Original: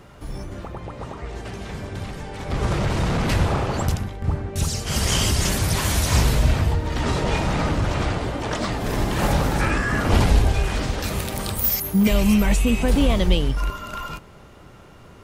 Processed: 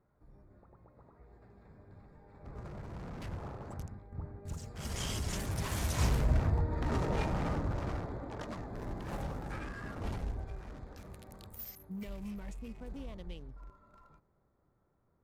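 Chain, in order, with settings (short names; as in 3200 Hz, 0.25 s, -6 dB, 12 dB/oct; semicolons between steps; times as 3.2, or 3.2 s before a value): Wiener smoothing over 15 samples; Doppler pass-by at 6.75, 8 m/s, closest 7 m; gain -9 dB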